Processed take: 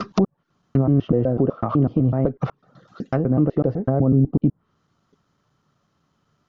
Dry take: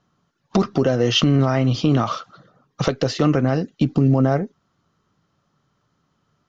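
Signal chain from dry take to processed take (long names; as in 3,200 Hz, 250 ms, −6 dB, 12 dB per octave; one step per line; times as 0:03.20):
slices reordered back to front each 125 ms, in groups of 6
treble cut that deepens with the level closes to 600 Hz, closed at −16 dBFS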